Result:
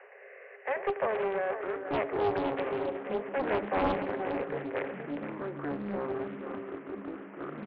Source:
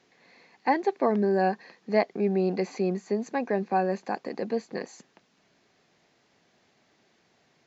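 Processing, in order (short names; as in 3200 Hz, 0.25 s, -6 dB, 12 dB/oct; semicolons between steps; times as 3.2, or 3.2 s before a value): per-bin compression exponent 0.6; rippled Chebyshev high-pass 390 Hz, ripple 9 dB; in parallel at +1 dB: limiter -25 dBFS, peak gain reduction 9 dB; on the sum: rotary speaker horn 0.75 Hz; on a send: echo 91 ms -15.5 dB; on the sum: echoes that change speed 0.678 s, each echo -6 st, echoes 3, each echo -6 dB; brick-wall FIR low-pass 3000 Hz; echo 0.474 s -8.5 dB; Doppler distortion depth 0.83 ms; gain -4.5 dB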